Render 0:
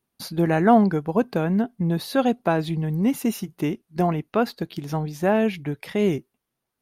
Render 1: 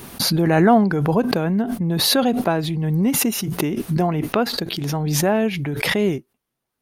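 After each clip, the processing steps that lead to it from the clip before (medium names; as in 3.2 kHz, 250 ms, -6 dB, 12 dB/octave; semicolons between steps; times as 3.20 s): swell ahead of each attack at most 22 dB/s; trim +1 dB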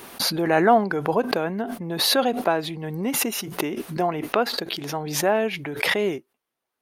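tone controls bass -15 dB, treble -4 dB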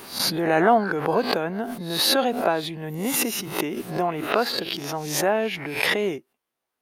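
reverse spectral sustain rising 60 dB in 0.37 s; trim -1.5 dB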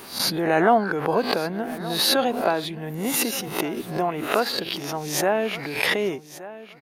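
feedback delay 1173 ms, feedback 18%, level -16.5 dB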